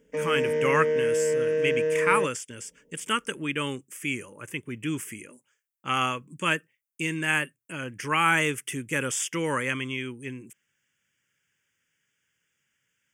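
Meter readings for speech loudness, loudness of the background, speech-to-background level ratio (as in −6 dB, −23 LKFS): −28.5 LKFS, −26.0 LKFS, −2.5 dB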